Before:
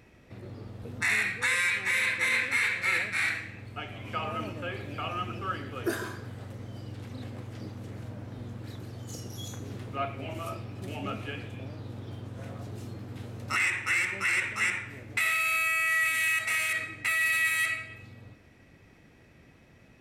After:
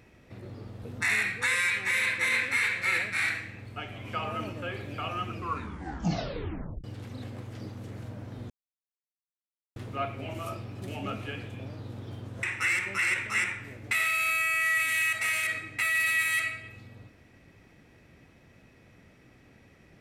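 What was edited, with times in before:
0:05.30: tape stop 1.54 s
0:08.50–0:09.76: silence
0:12.43–0:13.69: remove

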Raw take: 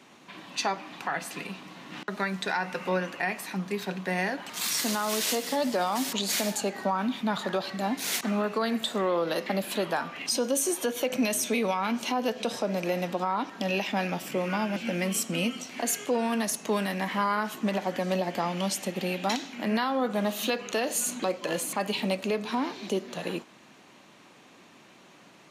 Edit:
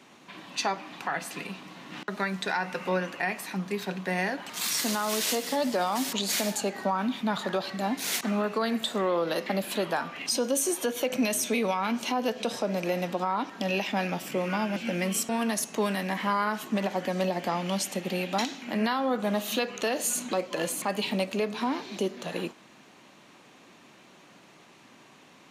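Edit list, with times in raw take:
0:15.29–0:16.20: remove

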